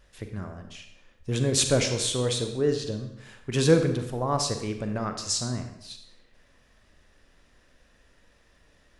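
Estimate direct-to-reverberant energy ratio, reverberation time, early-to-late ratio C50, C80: 6.5 dB, 0.85 s, 7.5 dB, 10.0 dB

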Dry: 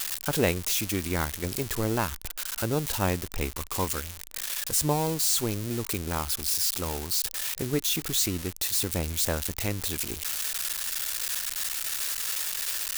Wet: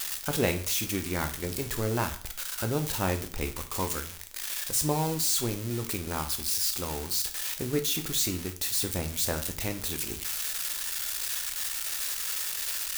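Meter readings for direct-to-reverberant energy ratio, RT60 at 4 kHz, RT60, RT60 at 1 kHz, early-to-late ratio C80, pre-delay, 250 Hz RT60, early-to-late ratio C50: 6.0 dB, 0.40 s, 0.45 s, 0.45 s, 16.5 dB, 5 ms, 0.45 s, 12.5 dB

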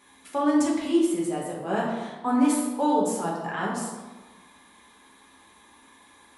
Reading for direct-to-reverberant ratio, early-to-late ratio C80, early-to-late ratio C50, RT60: -4.5 dB, 4.5 dB, 1.5 dB, 1.2 s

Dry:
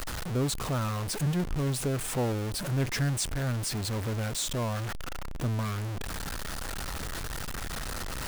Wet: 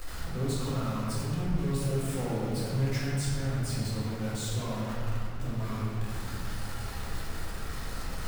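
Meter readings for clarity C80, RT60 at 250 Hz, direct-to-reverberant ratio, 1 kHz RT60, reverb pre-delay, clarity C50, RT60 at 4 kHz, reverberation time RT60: 0.0 dB, 3.2 s, -9.0 dB, 2.1 s, 4 ms, -3.0 dB, 1.2 s, 2.2 s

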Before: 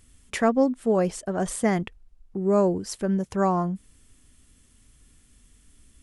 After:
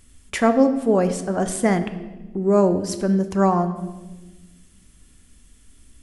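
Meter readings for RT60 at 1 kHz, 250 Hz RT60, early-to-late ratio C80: 1.0 s, 2.0 s, 13.0 dB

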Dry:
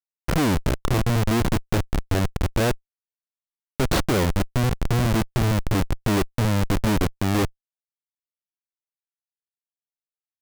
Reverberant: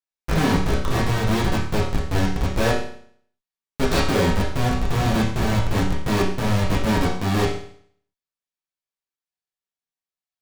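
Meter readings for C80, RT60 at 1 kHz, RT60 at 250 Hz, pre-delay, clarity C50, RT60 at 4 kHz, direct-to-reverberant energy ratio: 8.0 dB, 0.60 s, 0.60 s, 5 ms, 4.5 dB, 0.60 s, -6.0 dB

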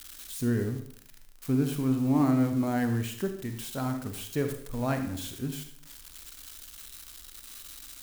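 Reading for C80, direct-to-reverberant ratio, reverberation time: 11.0 dB, 6.0 dB, 0.65 s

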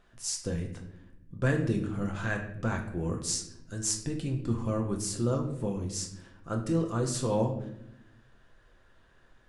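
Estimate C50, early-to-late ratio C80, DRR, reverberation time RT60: 8.0 dB, 11.0 dB, 1.5 dB, 0.80 s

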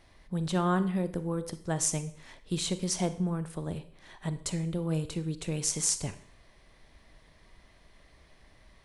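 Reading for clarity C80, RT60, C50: 17.5 dB, 0.55 s, 14.5 dB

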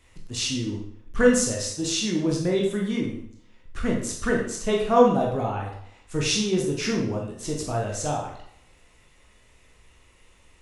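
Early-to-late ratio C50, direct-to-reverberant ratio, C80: 4.0 dB, -1.5 dB, 7.5 dB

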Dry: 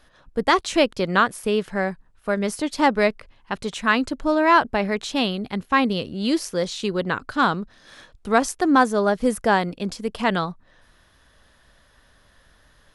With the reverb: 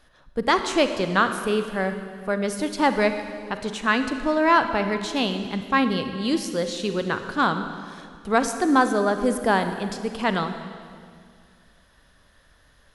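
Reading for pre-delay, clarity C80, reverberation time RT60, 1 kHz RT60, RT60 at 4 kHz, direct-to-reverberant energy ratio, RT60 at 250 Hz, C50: 34 ms, 9.5 dB, 2.1 s, 2.0 s, 2.0 s, 8.0 dB, 2.4 s, 8.5 dB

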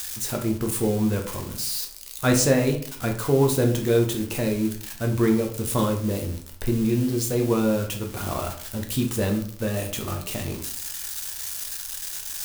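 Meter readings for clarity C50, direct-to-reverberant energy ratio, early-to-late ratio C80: 8.5 dB, 2.0 dB, 13.0 dB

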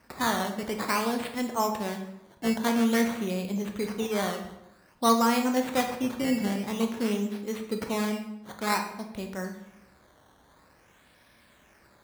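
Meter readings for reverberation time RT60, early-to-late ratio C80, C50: 0.85 s, 10.0 dB, 7.5 dB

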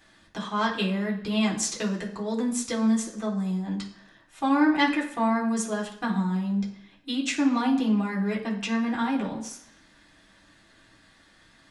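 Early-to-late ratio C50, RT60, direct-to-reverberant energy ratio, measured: 8.5 dB, 0.75 s, -4.0 dB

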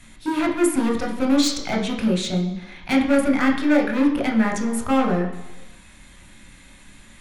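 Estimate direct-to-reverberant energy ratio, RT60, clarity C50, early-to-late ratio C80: 0.5 dB, 1.1 s, 7.5 dB, 9.5 dB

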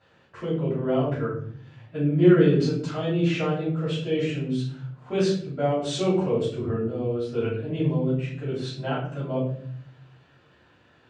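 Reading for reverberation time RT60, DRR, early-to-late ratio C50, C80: 0.55 s, -12.0 dB, 3.5 dB, 8.0 dB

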